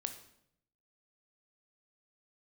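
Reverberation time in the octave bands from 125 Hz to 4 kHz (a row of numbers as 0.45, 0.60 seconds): 1.0, 0.90, 0.75, 0.65, 0.65, 0.60 seconds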